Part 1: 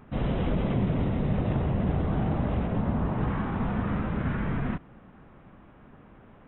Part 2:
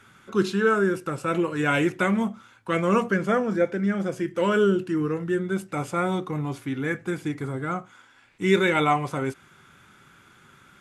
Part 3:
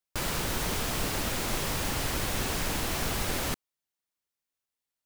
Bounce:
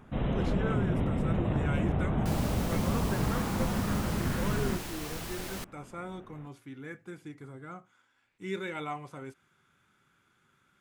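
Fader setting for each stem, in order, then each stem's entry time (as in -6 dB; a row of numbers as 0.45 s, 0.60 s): -2.5 dB, -15.5 dB, -9.0 dB; 0.00 s, 0.00 s, 2.10 s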